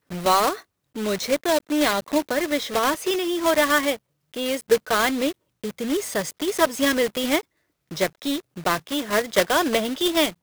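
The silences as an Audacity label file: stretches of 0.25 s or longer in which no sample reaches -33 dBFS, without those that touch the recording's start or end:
0.590000	0.960000	silence
3.960000	4.340000	silence
5.320000	5.640000	silence
7.410000	7.910000	silence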